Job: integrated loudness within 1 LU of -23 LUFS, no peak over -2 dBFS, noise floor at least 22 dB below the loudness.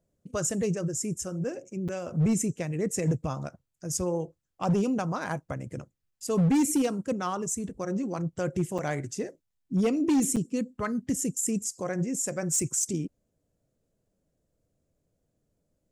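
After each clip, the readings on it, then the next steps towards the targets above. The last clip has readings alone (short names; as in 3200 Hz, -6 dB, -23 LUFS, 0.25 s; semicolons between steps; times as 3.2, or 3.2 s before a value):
clipped 1.1%; flat tops at -19.5 dBFS; dropouts 3; longest dropout 6.5 ms; loudness -29.0 LUFS; peak -19.5 dBFS; loudness target -23.0 LUFS
-> clip repair -19.5 dBFS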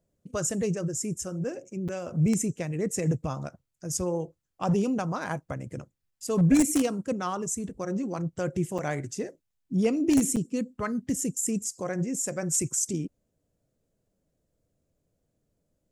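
clipped 0.0%; dropouts 3; longest dropout 6.5 ms
-> interpolate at 1.88/8.78/10.36, 6.5 ms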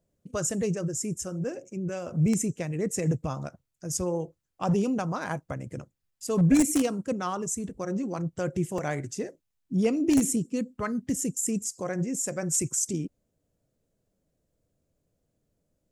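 dropouts 0; loudness -28.5 LUFS; peak -10.5 dBFS; loudness target -23.0 LUFS
-> gain +5.5 dB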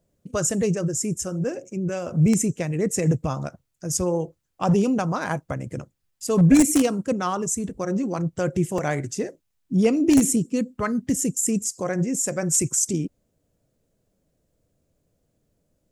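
loudness -23.0 LUFS; peak -5.0 dBFS; noise floor -73 dBFS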